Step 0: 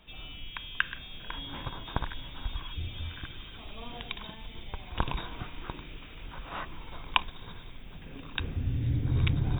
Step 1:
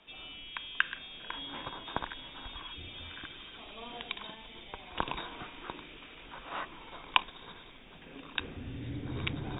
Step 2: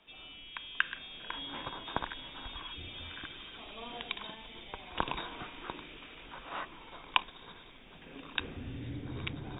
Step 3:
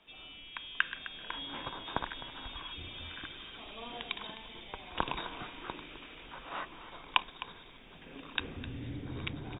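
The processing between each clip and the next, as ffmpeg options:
-filter_complex "[0:a]acrossover=split=220 7500:gain=0.178 1 0.0708[a][b][c];[a][b][c]amix=inputs=3:normalize=0"
-af "dynaudnorm=f=120:g=13:m=4dB,volume=-3.5dB"
-af "aecho=1:1:258:0.178"

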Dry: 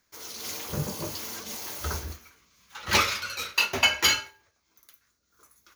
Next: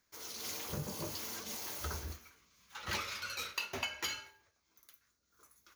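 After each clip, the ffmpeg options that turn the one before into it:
-af "acompressor=threshold=-30dB:ratio=6,volume=-5.5dB"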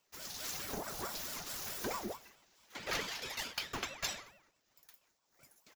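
-af "aecho=1:1:2.5:0.7,aeval=exprs='val(0)*sin(2*PI*680*n/s+680*0.6/4.6*sin(2*PI*4.6*n/s))':c=same,volume=1.5dB"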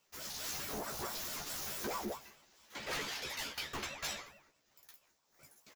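-filter_complex "[0:a]asoftclip=type=tanh:threshold=-35dB,asplit=2[a][b];[b]adelay=14,volume=-4dB[c];[a][c]amix=inputs=2:normalize=0,volume=1dB"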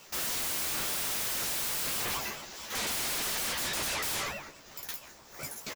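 -filter_complex "[0:a]aeval=exprs='0.0335*sin(PI/2*7.94*val(0)/0.0335)':c=same,asplit=2[a][b];[b]adelay=1399,volume=-19dB,highshelf=f=4k:g=-31.5[c];[a][c]amix=inputs=2:normalize=0"

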